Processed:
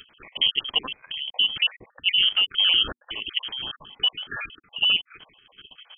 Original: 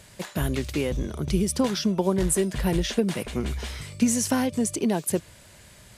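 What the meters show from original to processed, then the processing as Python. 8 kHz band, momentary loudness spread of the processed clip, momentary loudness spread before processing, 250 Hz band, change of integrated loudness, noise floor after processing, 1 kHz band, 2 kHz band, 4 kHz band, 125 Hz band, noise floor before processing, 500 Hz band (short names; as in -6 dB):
under -40 dB, 14 LU, 7 LU, -25.0 dB, +3.5 dB, -66 dBFS, -7.0 dB, +9.0 dB, +17.5 dB, under -20 dB, -51 dBFS, -20.0 dB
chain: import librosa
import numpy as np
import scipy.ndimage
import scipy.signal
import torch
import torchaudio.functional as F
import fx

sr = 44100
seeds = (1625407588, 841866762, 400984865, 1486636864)

y = fx.spec_dropout(x, sr, seeds[0], share_pct=49)
y = fx.freq_invert(y, sr, carrier_hz=3200)
y = fx.level_steps(y, sr, step_db=13)
y = F.gain(torch.from_numpy(y), 7.0).numpy()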